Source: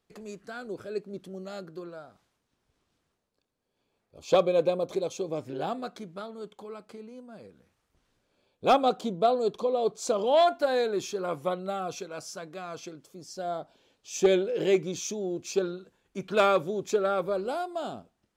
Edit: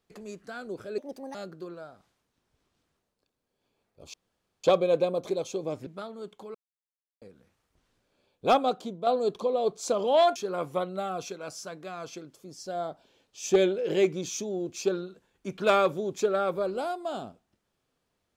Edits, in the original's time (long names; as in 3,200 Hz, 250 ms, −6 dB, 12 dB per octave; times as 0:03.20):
0:00.98–0:01.50: play speed 142%
0:04.29: splice in room tone 0.50 s
0:05.52–0:06.06: remove
0:06.74–0:07.41: silence
0:08.65–0:09.26: fade out, to −8.5 dB
0:10.55–0:11.06: remove